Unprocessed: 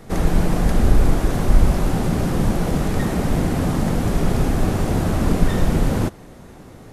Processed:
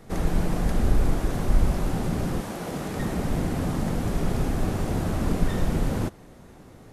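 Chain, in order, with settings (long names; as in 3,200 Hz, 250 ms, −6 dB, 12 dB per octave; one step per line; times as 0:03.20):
0:02.39–0:02.99: high-pass filter 580 Hz → 150 Hz 6 dB per octave
level −6.5 dB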